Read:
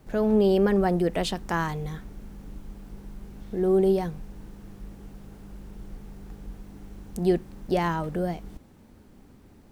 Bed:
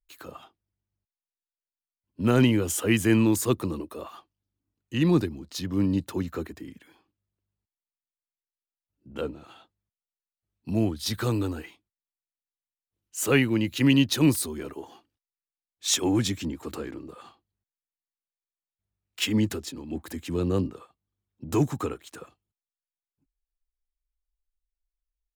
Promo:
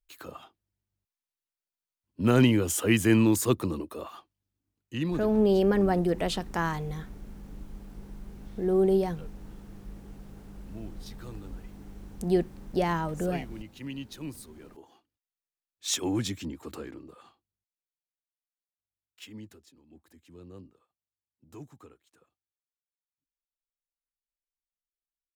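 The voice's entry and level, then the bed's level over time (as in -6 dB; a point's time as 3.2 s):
5.05 s, -2.0 dB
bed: 4.79 s -0.5 dB
5.44 s -18.5 dB
14.35 s -18.5 dB
15.29 s -5 dB
16.88 s -5 dB
19.59 s -22 dB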